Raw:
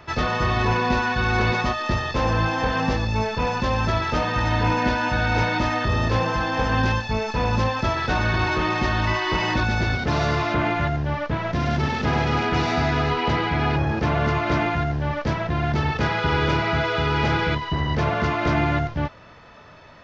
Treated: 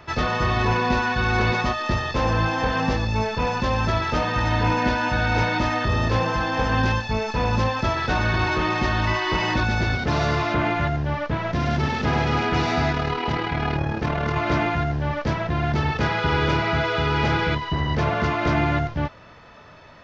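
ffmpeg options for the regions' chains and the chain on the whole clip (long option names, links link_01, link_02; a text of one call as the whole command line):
ffmpeg -i in.wav -filter_complex "[0:a]asettb=1/sr,asplit=3[link_01][link_02][link_03];[link_01]atrim=end=12.924[link_04];[link_02]atrim=start=12.92:end=14.36,asetpts=PTS-STARTPTS,afade=type=in:duration=0.004:curve=qsin,afade=type=out:start_time=1.436:duration=0.004:curve=qsin,asoftclip=type=hard:threshold=-10.5dB,tremolo=f=38:d=0.571[link_05];[link_03]atrim=start=14.356[link_06];[link_04][link_05]acrossfade=duration=0.004:curve1=hsin:curve2=qsin[link_07];[link_07][link_06]acrossfade=duration=0.004:curve1=qsin:curve2=hsin" out.wav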